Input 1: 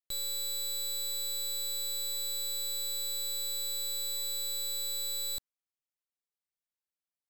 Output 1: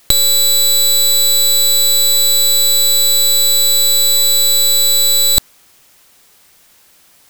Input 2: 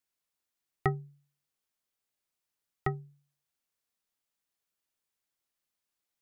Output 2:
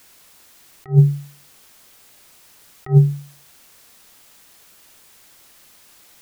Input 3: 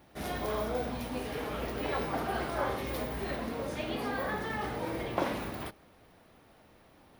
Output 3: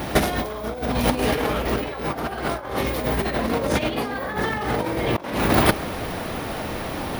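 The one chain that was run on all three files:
compressor with a negative ratio -42 dBFS, ratio -0.5; peak normalisation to -2 dBFS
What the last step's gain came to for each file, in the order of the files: +35.0 dB, +28.0 dB, +21.0 dB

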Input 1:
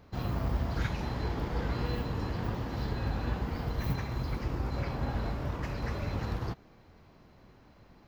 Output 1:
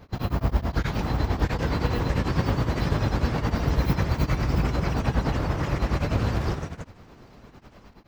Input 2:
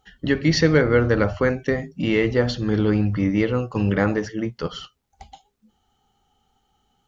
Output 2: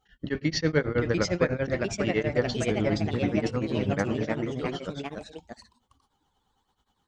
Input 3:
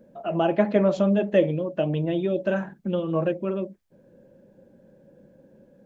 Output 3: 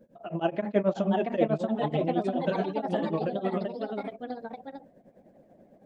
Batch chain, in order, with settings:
tremolo triangle 9.3 Hz, depth 100%; ever faster or slower copies 743 ms, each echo +2 st, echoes 3; peak normalisation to -9 dBFS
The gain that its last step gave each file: +10.5 dB, -4.0 dB, -1.5 dB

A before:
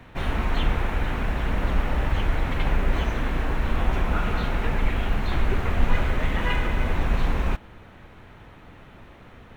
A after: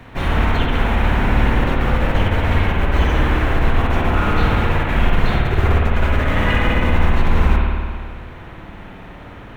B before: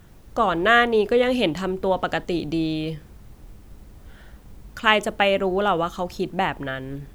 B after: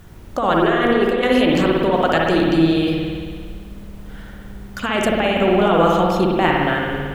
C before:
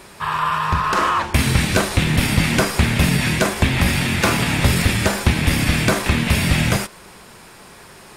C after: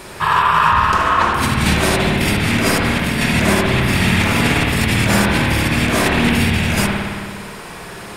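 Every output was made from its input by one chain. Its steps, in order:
compressor with a negative ratio -22 dBFS, ratio -1; spring tank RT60 1.9 s, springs 55 ms, chirp 45 ms, DRR -2 dB; peak normalisation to -1.5 dBFS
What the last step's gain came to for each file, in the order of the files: +5.0 dB, +3.5 dB, +2.5 dB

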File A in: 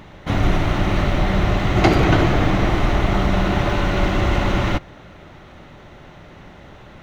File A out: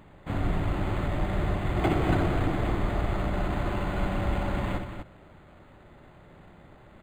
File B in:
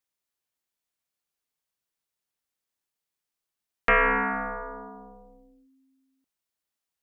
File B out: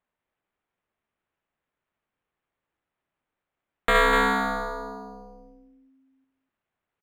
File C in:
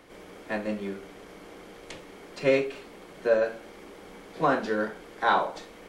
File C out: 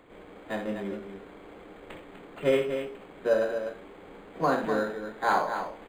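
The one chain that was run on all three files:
on a send: loudspeakers at several distances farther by 22 m -8 dB, 85 m -8 dB; on the sum: decimation joined by straight lines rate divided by 8×; peak normalisation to -12 dBFS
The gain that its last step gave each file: -10.5 dB, +0.5 dB, -1.0 dB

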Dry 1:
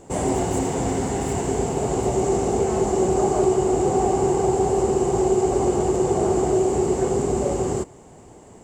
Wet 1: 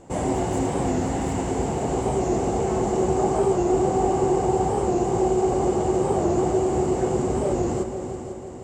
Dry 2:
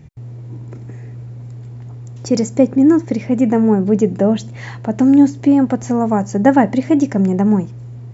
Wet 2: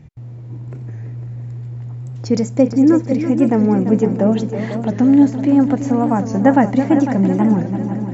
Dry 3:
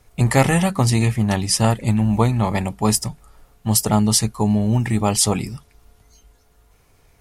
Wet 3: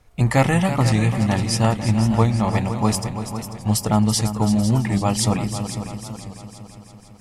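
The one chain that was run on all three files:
treble shelf 6.7 kHz -9 dB; band-stop 410 Hz, Q 12; on a send: multi-head delay 167 ms, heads second and third, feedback 53%, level -11 dB; on the sum: warped record 45 rpm, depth 100 cents; trim -1 dB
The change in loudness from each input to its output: -1.5 LU, -0.5 LU, -1.5 LU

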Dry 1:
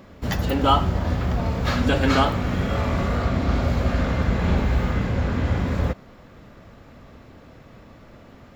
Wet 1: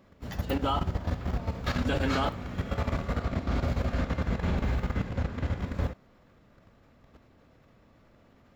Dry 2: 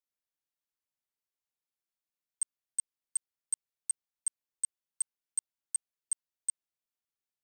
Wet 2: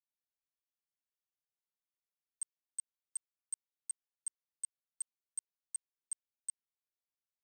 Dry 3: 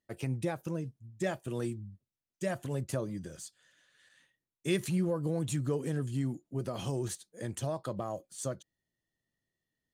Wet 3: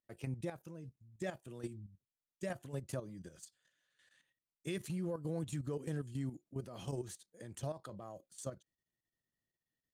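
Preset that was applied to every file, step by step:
level held to a coarse grid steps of 11 dB; trim -4.5 dB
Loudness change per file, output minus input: -8.5 LU, -8.5 LU, -8.0 LU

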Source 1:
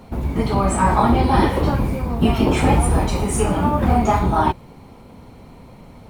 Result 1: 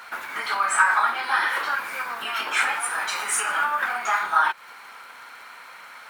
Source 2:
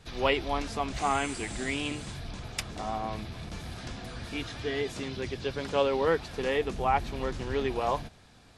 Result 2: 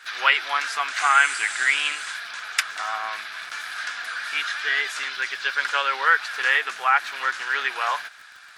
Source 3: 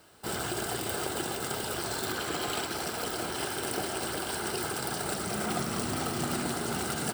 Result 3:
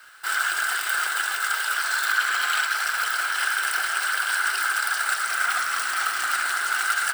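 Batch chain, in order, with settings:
compression, threshold -22 dBFS; resonant high-pass 1.5 kHz, resonance Q 4.5; crackle 64 per s -48 dBFS; normalise loudness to -23 LUFS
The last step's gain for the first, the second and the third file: +7.0 dB, +9.0 dB, +5.5 dB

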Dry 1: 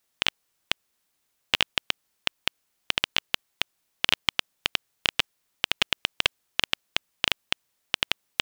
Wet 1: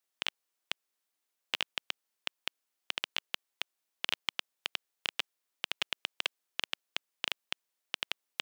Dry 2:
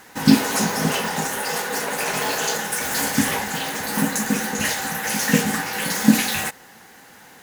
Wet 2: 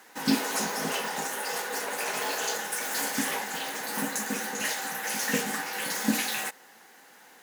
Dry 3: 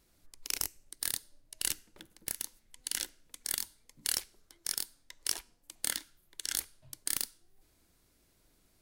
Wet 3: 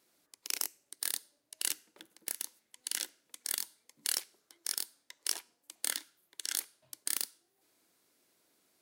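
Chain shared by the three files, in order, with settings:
high-pass 290 Hz 12 dB/octave; peak normalisation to -12 dBFS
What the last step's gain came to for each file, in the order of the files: -10.0 dB, -7.0 dB, -0.5 dB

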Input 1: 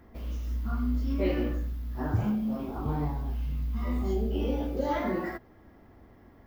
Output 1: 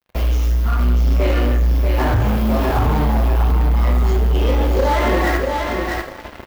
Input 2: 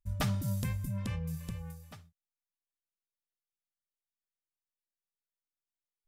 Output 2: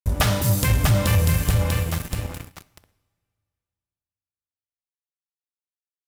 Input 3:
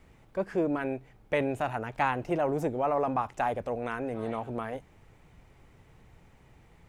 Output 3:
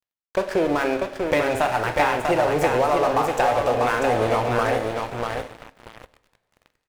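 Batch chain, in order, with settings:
peaking EQ 200 Hz -12 dB 1.3 oct; compression 12:1, threshold -35 dBFS; on a send: feedback delay 643 ms, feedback 32%, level -4.5 dB; on the sum: crossover distortion -49.5 dBFS; two-slope reverb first 0.84 s, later 2.6 s, from -18 dB, DRR 5.5 dB; waveshaping leveller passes 2; peak normalisation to -9 dBFS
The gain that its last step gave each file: +17.5 dB, +15.5 dB, +12.5 dB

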